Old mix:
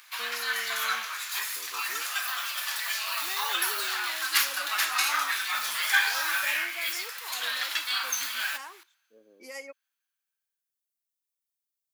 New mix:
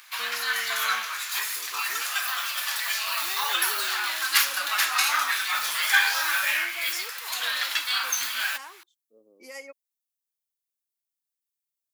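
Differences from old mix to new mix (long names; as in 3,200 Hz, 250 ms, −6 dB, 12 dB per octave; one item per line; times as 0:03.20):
background +5.5 dB
reverb: off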